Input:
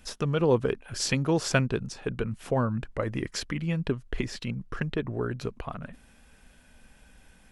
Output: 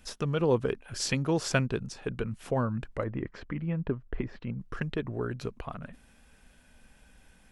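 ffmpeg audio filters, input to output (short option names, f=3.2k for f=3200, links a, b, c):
-filter_complex "[0:a]asplit=3[a][b][c];[a]afade=t=out:st=3.03:d=0.02[d];[b]lowpass=1.6k,afade=t=in:st=3.03:d=0.02,afade=t=out:st=4.58:d=0.02[e];[c]afade=t=in:st=4.58:d=0.02[f];[d][e][f]amix=inputs=3:normalize=0,volume=-2.5dB"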